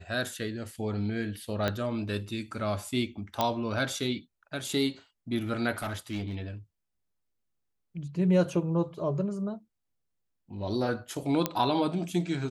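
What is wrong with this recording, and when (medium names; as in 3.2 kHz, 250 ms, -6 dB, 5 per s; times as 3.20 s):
1.68 s: pop -14 dBFS
3.41 s: pop -11 dBFS
5.78–6.35 s: clipped -28.5 dBFS
11.46 s: pop -10 dBFS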